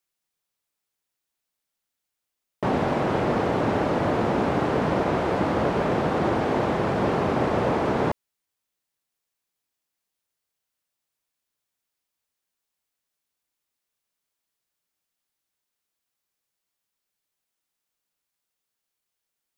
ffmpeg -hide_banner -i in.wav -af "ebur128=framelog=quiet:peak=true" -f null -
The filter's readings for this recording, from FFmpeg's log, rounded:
Integrated loudness:
  I:         -23.9 LUFS
  Threshold: -34.0 LUFS
Loudness range:
  LRA:         7.5 LU
  Threshold: -45.4 LUFS
  LRA low:   -31.1 LUFS
  LRA high:  -23.7 LUFS
True peak:
  Peak:       -9.8 dBFS